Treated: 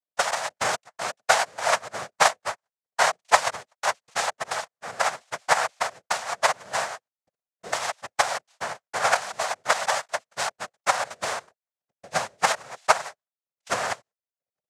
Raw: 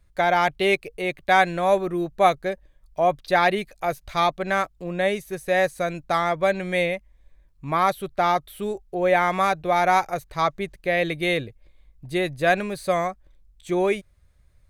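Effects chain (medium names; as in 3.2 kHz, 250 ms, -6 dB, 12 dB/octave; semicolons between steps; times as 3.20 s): bit-reversed sample order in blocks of 32 samples; transient shaper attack +11 dB, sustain -7 dB; gate -41 dBFS, range -20 dB; noise-vocoded speech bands 3; resonant low shelf 460 Hz -12.5 dB, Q 3; trim -6.5 dB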